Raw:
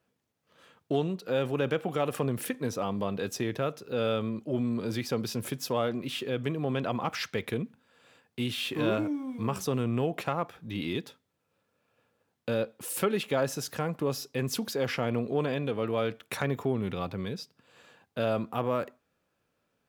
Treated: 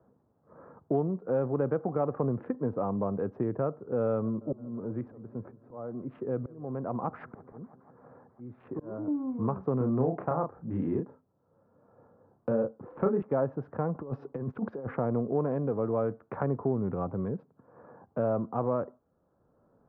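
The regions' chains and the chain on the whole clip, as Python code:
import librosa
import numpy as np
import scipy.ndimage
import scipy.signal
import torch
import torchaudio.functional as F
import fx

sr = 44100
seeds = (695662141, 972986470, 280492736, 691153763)

y = fx.chain(x, sr, fx.auto_swell(attack_ms=787.0),
    fx.echo_warbled(ms=165, feedback_pct=70, rate_hz=2.8, cents=82, wet_db=-23.5), at=(4.08, 9.08))
y = fx.chain(y, sr, fx.env_lowpass_down(base_hz=2200.0, full_db=-26.0),
    fx.doubler(ms=31.0, db=-4.0), at=(9.77, 13.22))
y = fx.chain(y, sr, fx.highpass(hz=58.0, slope=12),
    fx.high_shelf(hz=3600.0, db=7.5),
    fx.over_compress(threshold_db=-34.0, ratio=-0.5), at=(13.95, 14.87))
y = fx.wiener(y, sr, points=15)
y = scipy.signal.sosfilt(scipy.signal.butter(4, 1200.0, 'lowpass', fs=sr, output='sos'), y)
y = fx.band_squash(y, sr, depth_pct=40)
y = y * 10.0 ** (1.0 / 20.0)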